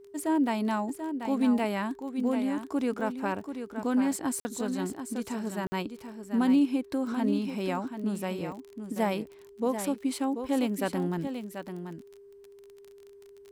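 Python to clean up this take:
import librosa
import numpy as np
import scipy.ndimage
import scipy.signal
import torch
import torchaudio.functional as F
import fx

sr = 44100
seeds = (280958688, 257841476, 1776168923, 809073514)

y = fx.fix_declick_ar(x, sr, threshold=6.5)
y = fx.notch(y, sr, hz=400.0, q=30.0)
y = fx.fix_interpolate(y, sr, at_s=(4.4, 5.67), length_ms=50.0)
y = fx.fix_echo_inverse(y, sr, delay_ms=736, level_db=-8.5)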